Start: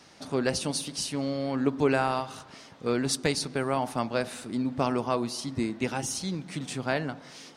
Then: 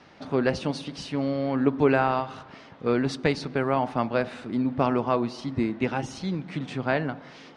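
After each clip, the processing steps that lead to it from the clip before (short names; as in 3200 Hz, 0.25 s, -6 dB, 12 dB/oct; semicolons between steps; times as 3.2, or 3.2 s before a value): LPF 2800 Hz 12 dB/oct; gain +3.5 dB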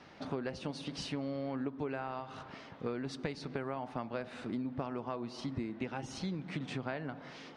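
compressor 10:1, threshold -31 dBFS, peak gain reduction 16 dB; gain -3 dB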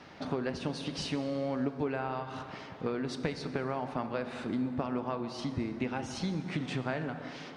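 plate-style reverb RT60 2.7 s, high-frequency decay 0.65×, DRR 9 dB; gain +4 dB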